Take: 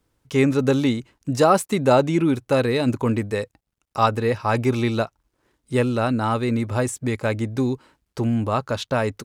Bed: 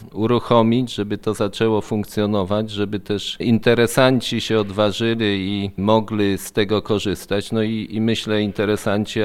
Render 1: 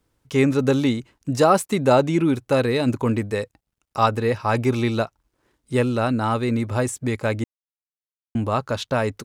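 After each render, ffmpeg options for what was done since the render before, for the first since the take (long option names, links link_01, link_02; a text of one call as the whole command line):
ffmpeg -i in.wav -filter_complex "[0:a]asplit=3[link_01][link_02][link_03];[link_01]atrim=end=7.44,asetpts=PTS-STARTPTS,afade=type=out:start_time=7.436:duration=0.004:curve=hsin[link_04];[link_02]atrim=start=7.44:end=8.35,asetpts=PTS-STARTPTS,volume=0[link_05];[link_03]atrim=start=8.35,asetpts=PTS-STARTPTS,afade=type=in:duration=0.004:curve=hsin[link_06];[link_04][link_05][link_06]concat=n=3:v=0:a=1" out.wav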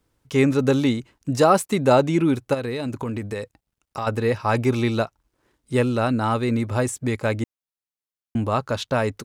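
ffmpeg -i in.wav -filter_complex "[0:a]asplit=3[link_01][link_02][link_03];[link_01]afade=type=out:start_time=2.53:duration=0.02[link_04];[link_02]acompressor=threshold=-24dB:ratio=6:attack=3.2:release=140:knee=1:detection=peak,afade=type=in:start_time=2.53:duration=0.02,afade=type=out:start_time=4.06:duration=0.02[link_05];[link_03]afade=type=in:start_time=4.06:duration=0.02[link_06];[link_04][link_05][link_06]amix=inputs=3:normalize=0" out.wav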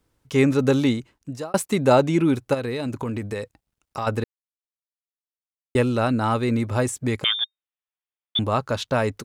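ffmpeg -i in.wav -filter_complex "[0:a]asettb=1/sr,asplit=3[link_01][link_02][link_03];[link_01]atrim=end=7.244[link_04];[link_02]atrim=start=7.24:end=8.39,asetpts=PTS-STARTPTS,afade=type=in:duration=0.004:curve=qsin,afade=type=out:start_time=1.146:duration=0.004:curve=qsin,lowpass=frequency=3100:width_type=q:width=0.5098,lowpass=frequency=3100:width_type=q:width=0.6013,lowpass=frequency=3100:width_type=q:width=0.9,lowpass=frequency=3100:width_type=q:width=2.563,afreqshift=-3700[link_05];[link_03]atrim=start=8.386[link_06];[link_04][link_05]acrossfade=duration=0.004:curve1=hsin:curve2=qsin[link_07];[link_07][link_06]acrossfade=duration=0.004:curve1=qsin:curve2=hsin,asplit=4[link_08][link_09][link_10][link_11];[link_08]atrim=end=1.54,asetpts=PTS-STARTPTS,afade=type=out:start_time=0.93:duration=0.61[link_12];[link_09]atrim=start=1.54:end=4.24,asetpts=PTS-STARTPTS,afade=type=in:duration=0.004:curve=hsin,afade=type=out:start_time=2.696:duration=0.004:curve=hsin[link_13];[link_10]atrim=start=4.24:end=5.75,asetpts=PTS-STARTPTS,volume=0[link_14];[link_11]atrim=start=5.75,asetpts=PTS-STARTPTS,afade=type=in:duration=0.004:curve=hsin[link_15];[link_12][link_13][link_14][link_15]concat=n=4:v=0:a=1" out.wav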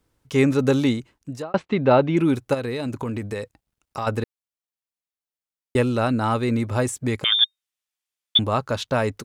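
ffmpeg -i in.wav -filter_complex "[0:a]asettb=1/sr,asplit=3[link_01][link_02][link_03];[link_01]atrim=end=1.424[link_04];[link_02]atrim=start=1.42:end=2.17,asetpts=PTS-STARTPTS,afade=type=in:duration=0.004:curve=qsin,afade=type=out:start_time=0.746:duration=0.004:curve=qsin,lowpass=frequency=3600:width=0.5412,lowpass=frequency=3600:width=1.3066[link_05];[link_03]atrim=start=2.166[link_06];[link_04][link_05]acrossfade=duration=0.004:curve1=hsin:curve2=qsin[link_07];[link_07][link_06]acrossfade=duration=0.004:curve1=qsin:curve2=hsin,asettb=1/sr,asplit=3[link_08][link_09][link_10];[link_08]atrim=end=7.324[link_11];[link_09]atrim=start=7.32:end=8.38,asetpts=PTS-STARTPTS,afade=type=in:duration=0.004:curve=qsin,afade=type=out:start_time=1.056:duration=0.004:curve=qsin,equalizer=frequency=6600:width=0.32:gain=10[link_12];[link_10]atrim=start=8.376[link_13];[link_11][link_12]acrossfade=duration=0.004:curve1=hsin:curve2=qsin[link_14];[link_14][link_13]acrossfade=duration=0.004:curve1=qsin:curve2=hsin" out.wav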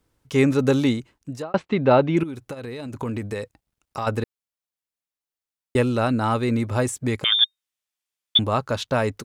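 ffmpeg -i in.wav -filter_complex "[0:a]asettb=1/sr,asplit=3[link_01][link_02][link_03];[link_01]atrim=end=2.234[link_04];[link_02]atrim=start=2.23:end=2.95,asetpts=PTS-STARTPTS,afade=type=in:duration=0.004:curve=qsin,afade=type=out:start_time=0.716:duration=0.004:curve=qsin,acompressor=threshold=-30dB:ratio=6:attack=3.2:release=140:knee=1:detection=peak[link_05];[link_03]atrim=start=2.946[link_06];[link_04][link_05]acrossfade=duration=0.004:curve1=hsin:curve2=qsin[link_07];[link_07][link_06]acrossfade=duration=0.004:curve1=qsin:curve2=hsin" out.wav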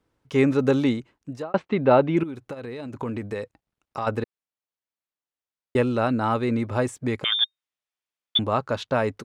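ffmpeg -i in.wav -af "lowpass=frequency=2600:poles=1,lowshelf=frequency=110:gain=-8.5" out.wav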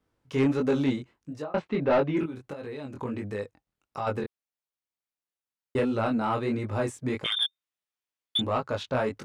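ffmpeg -i in.wav -af "flanger=delay=19:depth=4.8:speed=1.5,asoftclip=type=tanh:threshold=-16.5dB" out.wav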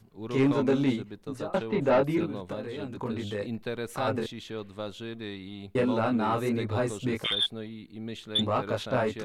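ffmpeg -i in.wav -i bed.wav -filter_complex "[1:a]volume=-19dB[link_01];[0:a][link_01]amix=inputs=2:normalize=0" out.wav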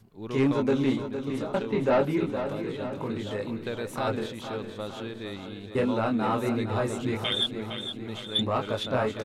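ffmpeg -i in.wav -af "aecho=1:1:461|922|1383|1844|2305|2766|3227:0.355|0.202|0.115|0.0657|0.0375|0.0213|0.0122" out.wav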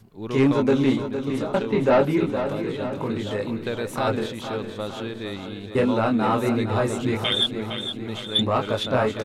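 ffmpeg -i in.wav -af "volume=5dB" out.wav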